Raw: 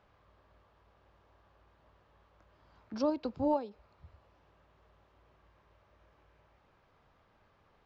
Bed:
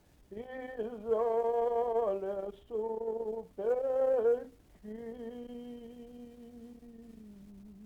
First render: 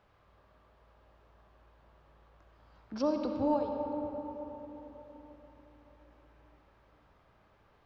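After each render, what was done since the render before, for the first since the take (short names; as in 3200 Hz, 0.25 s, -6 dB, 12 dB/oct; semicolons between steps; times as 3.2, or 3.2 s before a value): digital reverb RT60 4.3 s, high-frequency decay 0.4×, pre-delay 25 ms, DRR 2.5 dB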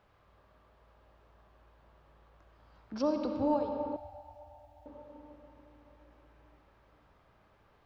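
3.96–4.86 EQ curve 100 Hz 0 dB, 140 Hz -22 dB, 500 Hz -28 dB, 710 Hz +9 dB, 1000 Hz -17 dB, 1700 Hz -7 dB, 2300 Hz -6 dB, 4400 Hz -1 dB, 9000 Hz +5 dB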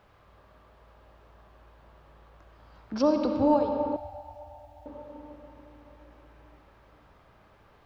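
gain +7 dB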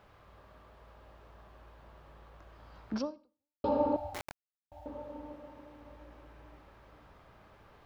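2.96–3.64 fade out exponential; 4.14–4.72 requantised 6-bit, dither none; 5.32–5.81 low shelf 69 Hz -11.5 dB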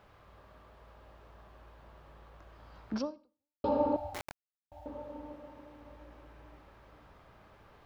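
nothing audible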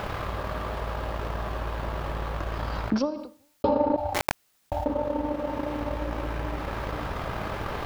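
transient shaper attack +10 dB, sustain -11 dB; fast leveller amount 70%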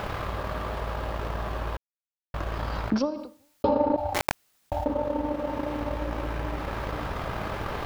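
1.77–2.34 mute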